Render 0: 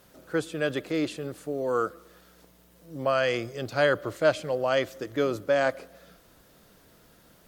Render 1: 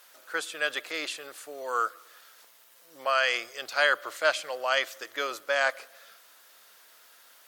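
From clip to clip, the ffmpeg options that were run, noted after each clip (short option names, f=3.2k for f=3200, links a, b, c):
-af "highpass=1.1k,volume=5.5dB"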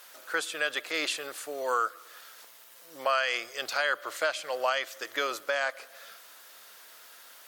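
-af "alimiter=limit=-21dB:level=0:latency=1:release=370,volume=4.5dB"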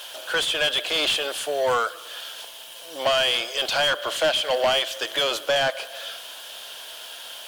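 -filter_complex "[0:a]equalizer=f=630:t=o:w=0.33:g=4,equalizer=f=1.25k:t=o:w=0.33:g=-10,equalizer=f=2k:t=o:w=0.33:g=-10,equalizer=f=3.15k:t=o:w=0.33:g=12,equalizer=f=10k:t=o:w=0.33:g=6,asplit=2[a][b];[b]highpass=f=720:p=1,volume=22dB,asoftclip=type=tanh:threshold=-12dB[c];[a][c]amix=inputs=2:normalize=0,lowpass=f=3k:p=1,volume=-6dB,acrusher=bits=9:dc=4:mix=0:aa=0.000001"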